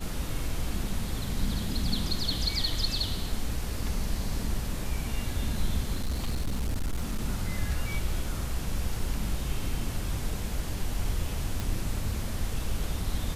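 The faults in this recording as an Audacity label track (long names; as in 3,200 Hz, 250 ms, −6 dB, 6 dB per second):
5.950000	7.210000	clipping −25 dBFS
11.600000	11.600000	click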